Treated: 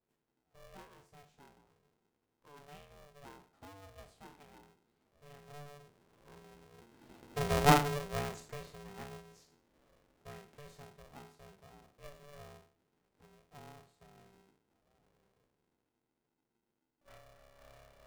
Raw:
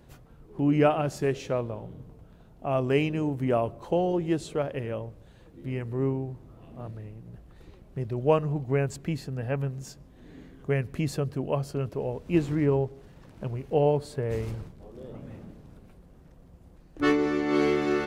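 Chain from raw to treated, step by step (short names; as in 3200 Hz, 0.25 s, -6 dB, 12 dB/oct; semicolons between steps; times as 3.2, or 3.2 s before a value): spectral trails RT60 0.43 s; Doppler pass-by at 7.57, 26 m/s, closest 3.8 m; polarity switched at an audio rate 290 Hz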